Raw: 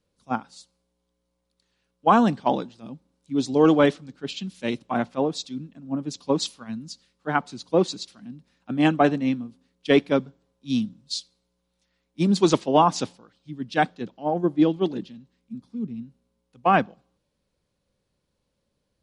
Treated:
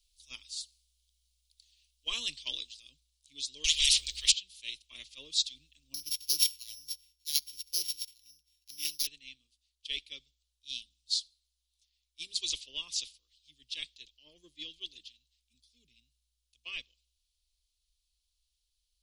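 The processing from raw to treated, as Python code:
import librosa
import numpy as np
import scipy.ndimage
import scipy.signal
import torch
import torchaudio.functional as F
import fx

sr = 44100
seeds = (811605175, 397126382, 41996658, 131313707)

y = fx.spectral_comp(x, sr, ratio=10.0, at=(3.64, 4.32))
y = fx.sample_sort(y, sr, block=8, at=(5.94, 9.07))
y = scipy.signal.sosfilt(scipy.signal.cheby2(4, 40, [100.0, 1600.0], 'bandstop', fs=sr, output='sos'), y)
y = fx.dynamic_eq(y, sr, hz=6400.0, q=1.3, threshold_db=-51.0, ratio=4.0, max_db=-4)
y = fx.rider(y, sr, range_db=10, speed_s=2.0)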